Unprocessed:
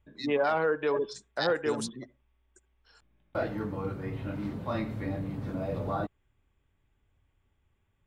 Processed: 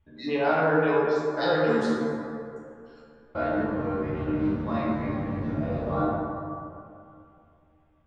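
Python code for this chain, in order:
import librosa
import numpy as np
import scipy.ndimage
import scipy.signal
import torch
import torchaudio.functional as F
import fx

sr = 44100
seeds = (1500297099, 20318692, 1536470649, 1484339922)

y = fx.air_absorb(x, sr, metres=140.0)
y = fx.comb_fb(y, sr, f0_hz=77.0, decay_s=0.17, harmonics='all', damping=0.0, mix_pct=100)
y = fx.rev_plate(y, sr, seeds[0], rt60_s=2.6, hf_ratio=0.4, predelay_ms=0, drr_db=-4.5)
y = F.gain(torch.from_numpy(y), 6.5).numpy()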